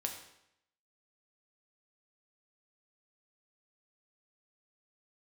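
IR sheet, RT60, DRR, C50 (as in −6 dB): 0.80 s, 2.0 dB, 7.0 dB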